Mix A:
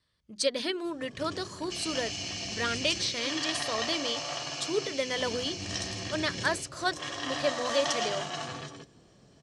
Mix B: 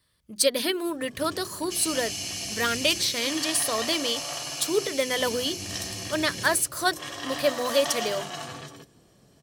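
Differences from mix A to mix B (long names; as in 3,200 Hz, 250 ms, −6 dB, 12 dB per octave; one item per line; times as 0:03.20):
speech +5.0 dB
second sound: remove high-frequency loss of the air 73 metres
master: remove low-pass filter 7,300 Hz 24 dB per octave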